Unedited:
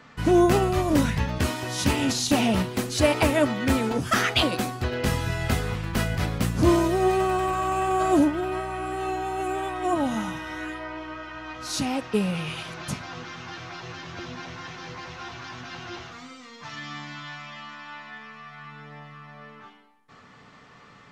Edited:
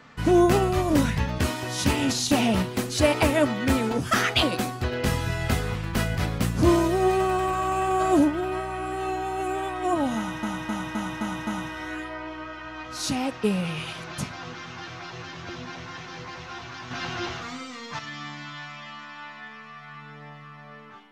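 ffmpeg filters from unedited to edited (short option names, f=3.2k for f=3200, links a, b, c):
-filter_complex "[0:a]asplit=8[a][b][c][d][e][f][g][h];[a]atrim=end=10.432[i];[b]atrim=start=10.168:end=10.432[j];[c]atrim=start=10.168:end=10.432[k];[d]atrim=start=10.168:end=10.432[l];[e]atrim=start=10.168:end=10.432[m];[f]atrim=start=10.168:end=15.612[n];[g]atrim=start=15.608:end=16.692,asetpts=PTS-STARTPTS,volume=6.5dB[o];[h]atrim=start=16.688[p];[i][j]acrossfade=d=0.004:c1=hsin:c2=hsin[q];[q][k]acrossfade=d=0.004:c1=hsin:c2=hsin[r];[r][l]acrossfade=d=0.004:c1=hsin:c2=hsin[s];[s][m]acrossfade=d=0.004:c1=hsin:c2=hsin[t];[t][n]acrossfade=d=0.004:c1=hsin:c2=hsin[u];[u][o]acrossfade=d=0.004:c1=hsin:c2=hsin[v];[v][p]acrossfade=d=0.004:c1=hsin:c2=hsin"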